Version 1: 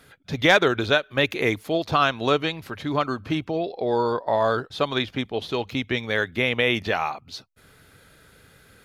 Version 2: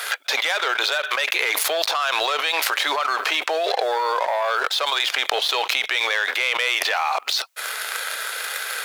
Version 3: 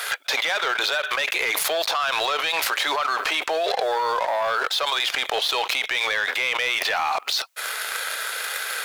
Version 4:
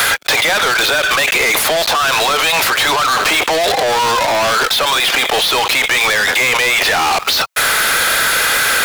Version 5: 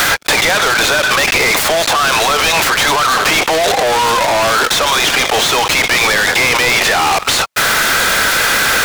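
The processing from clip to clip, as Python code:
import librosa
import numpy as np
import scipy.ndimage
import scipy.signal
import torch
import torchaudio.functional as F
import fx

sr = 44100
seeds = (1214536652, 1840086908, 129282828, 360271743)

y1 = fx.leveller(x, sr, passes=2)
y1 = scipy.signal.sosfilt(scipy.signal.bessel(6, 900.0, 'highpass', norm='mag', fs=sr, output='sos'), y1)
y1 = fx.env_flatten(y1, sr, amount_pct=100)
y1 = y1 * librosa.db_to_amplitude(-8.5)
y2 = 10.0 ** (-13.5 / 20.0) * np.tanh(y1 / 10.0 ** (-13.5 / 20.0))
y3 = fx.rider(y2, sr, range_db=3, speed_s=0.5)
y3 = fx.leveller(y3, sr, passes=5)
y3 = fx.band_squash(y3, sr, depth_pct=70)
y4 = fx.noise_mod_delay(y3, sr, seeds[0], noise_hz=2300.0, depth_ms=0.032)
y4 = y4 * librosa.db_to_amplitude(1.5)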